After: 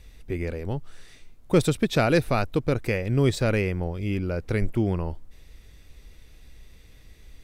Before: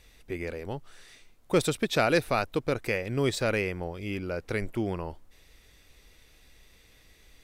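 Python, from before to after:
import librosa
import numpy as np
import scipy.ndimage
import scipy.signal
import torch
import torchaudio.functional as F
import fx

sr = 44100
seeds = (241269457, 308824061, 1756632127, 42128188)

y = fx.low_shelf(x, sr, hz=260.0, db=11.5)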